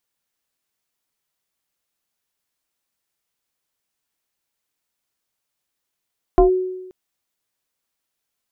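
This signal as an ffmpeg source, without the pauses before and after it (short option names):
-f lavfi -i "aevalsrc='0.473*pow(10,-3*t/1.02)*sin(2*PI*370*t+1.2*clip(1-t/0.12,0,1)*sin(2*PI*0.9*370*t))':d=0.53:s=44100"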